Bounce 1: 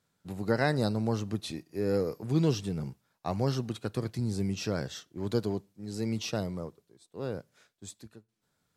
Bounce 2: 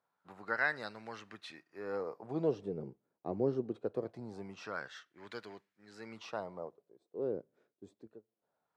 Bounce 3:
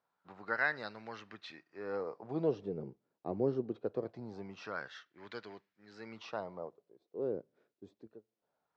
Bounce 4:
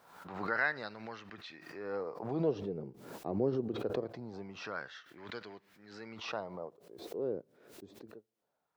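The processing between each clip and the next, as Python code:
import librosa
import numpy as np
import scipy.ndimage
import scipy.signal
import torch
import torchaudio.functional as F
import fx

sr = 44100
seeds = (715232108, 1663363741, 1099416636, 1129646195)

y1 = fx.wah_lfo(x, sr, hz=0.23, low_hz=360.0, high_hz=1900.0, q=2.2)
y1 = F.gain(torch.from_numpy(y1), 3.0).numpy()
y2 = scipy.signal.sosfilt(scipy.signal.butter(4, 5700.0, 'lowpass', fs=sr, output='sos'), y1)
y3 = fx.pre_swell(y2, sr, db_per_s=65.0)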